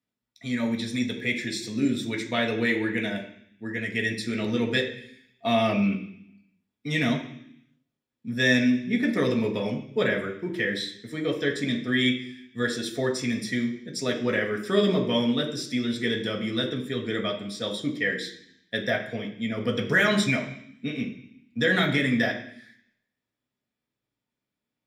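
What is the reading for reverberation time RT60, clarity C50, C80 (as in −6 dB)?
0.65 s, 8.5 dB, 11.5 dB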